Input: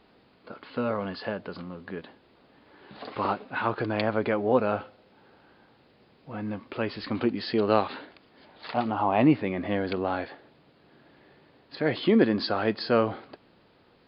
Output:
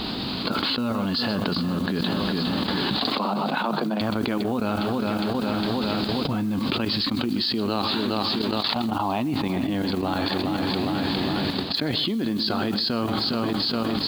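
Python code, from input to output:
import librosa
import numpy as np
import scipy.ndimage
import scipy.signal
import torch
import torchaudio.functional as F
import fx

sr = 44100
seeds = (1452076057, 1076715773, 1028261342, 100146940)

y = fx.echo_feedback(x, sr, ms=409, feedback_pct=51, wet_db=-15)
y = fx.level_steps(y, sr, step_db=14)
y = fx.graphic_eq(y, sr, hz=(250, 500, 2000, 4000), db=(5, -9, -8, 11))
y = fx.mod_noise(y, sr, seeds[0], snr_db=28)
y = fx.cheby_ripple_highpass(y, sr, hz=150.0, ripple_db=9, at=(3.15, 4.01))
y = y + 10.0 ** (-18.0 / 20.0) * np.pad(y, (int(128 * sr / 1000.0), 0))[:len(y)]
y = fx.env_flatten(y, sr, amount_pct=100)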